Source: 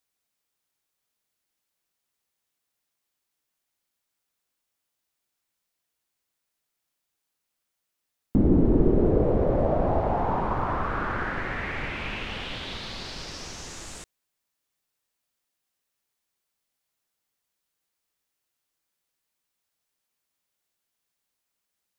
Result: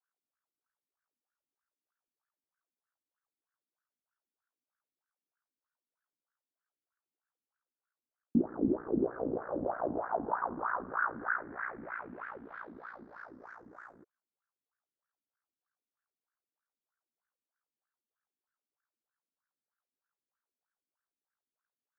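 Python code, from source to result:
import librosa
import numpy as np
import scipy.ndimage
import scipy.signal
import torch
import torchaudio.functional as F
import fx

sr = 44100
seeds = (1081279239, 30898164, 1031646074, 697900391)

y = x * np.sin(2.0 * np.pi * 29.0 * np.arange(len(x)) / sr)
y = fx.wah_lfo(y, sr, hz=3.2, low_hz=240.0, high_hz=1600.0, q=4.3)
y = fx.high_shelf_res(y, sr, hz=2100.0, db=-11.0, q=3.0)
y = F.gain(torch.from_numpy(y), 1.5).numpy()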